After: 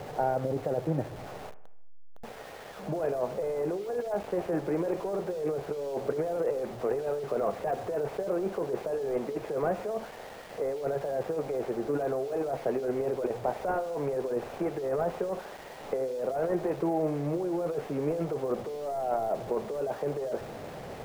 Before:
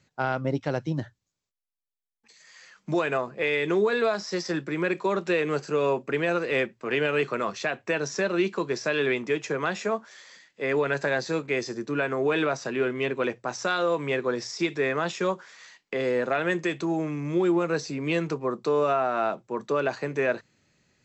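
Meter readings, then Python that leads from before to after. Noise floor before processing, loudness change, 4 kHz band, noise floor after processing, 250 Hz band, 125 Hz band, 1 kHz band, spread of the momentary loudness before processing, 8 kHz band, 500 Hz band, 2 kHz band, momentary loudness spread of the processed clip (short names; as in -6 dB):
-82 dBFS, -5.0 dB, -15.0 dB, -44 dBFS, -5.5 dB, -4.0 dB, -4.0 dB, 6 LU, n/a, -3.0 dB, -17.0 dB, 8 LU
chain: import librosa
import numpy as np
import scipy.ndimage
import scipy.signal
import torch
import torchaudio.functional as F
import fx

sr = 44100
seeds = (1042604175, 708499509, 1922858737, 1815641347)

p1 = fx.delta_mod(x, sr, bps=16000, step_db=-34.0)
p2 = scipy.signal.sosfilt(scipy.signal.butter(2, 1200.0, 'lowpass', fs=sr, output='sos'), p1)
p3 = fx.band_shelf(p2, sr, hz=580.0, db=9.5, octaves=1.2)
p4 = fx.over_compress(p3, sr, threshold_db=-24.0, ratio=-1.0)
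p5 = p4 + fx.echo_feedback(p4, sr, ms=76, feedback_pct=55, wet_db=-17, dry=0)
p6 = np.where(np.abs(p5) >= 10.0 ** (-38.5 / 20.0), p5, 0.0)
y = F.gain(torch.from_numpy(p6), -6.0).numpy()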